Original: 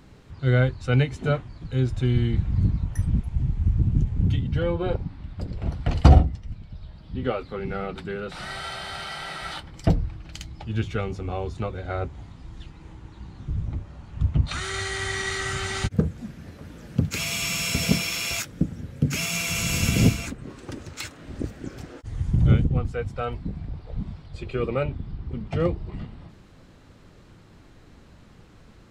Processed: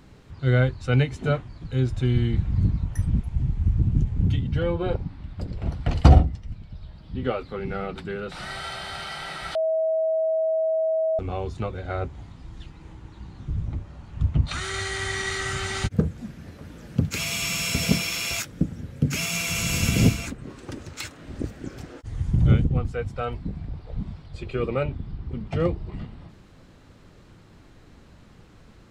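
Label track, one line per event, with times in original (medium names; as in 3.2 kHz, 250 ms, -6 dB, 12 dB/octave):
9.550000	11.190000	bleep 642 Hz -20 dBFS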